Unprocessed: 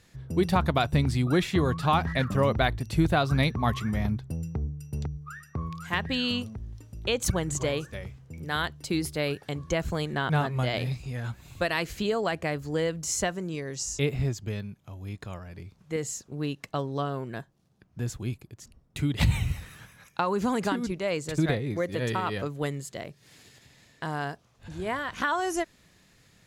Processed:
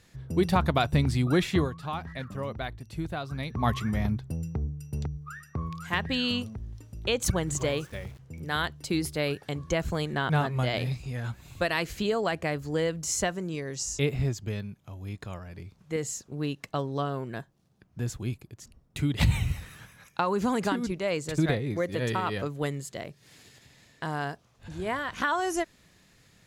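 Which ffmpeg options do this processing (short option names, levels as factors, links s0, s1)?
-filter_complex "[0:a]asettb=1/sr,asplit=3[s0][s1][s2];[s0]atrim=end=7.474[s3];[s1]atrim=start=7.47:end=8.19,asetpts=PTS-STARTPTS,afade=t=in:d=0.004:c=qsin,afade=t=out:st=0.716:d=0.004:c=qsin,aeval=exprs='val(0)*gte(abs(val(0)),0.00376)':c=same[s4];[s2]atrim=start=8.186[s5];[s3][s4]acrossfade=d=0.004:c1=hsin:c2=qsin[s6];[s6][s5]acrossfade=d=0.004:c1=qsin:c2=hsin,asplit=3[s7][s8][s9];[s7]atrim=end=1.7,asetpts=PTS-STARTPTS,afade=t=out:st=1.57:d=0.13:c=qsin:silence=0.298538[s10];[s8]atrim=start=1.7:end=3.49,asetpts=PTS-STARTPTS,volume=0.299[s11];[s9]atrim=start=3.49,asetpts=PTS-STARTPTS,afade=t=in:d=0.13:c=qsin:silence=0.298538[s12];[s10][s11][s12]concat=n=3:v=0:a=1"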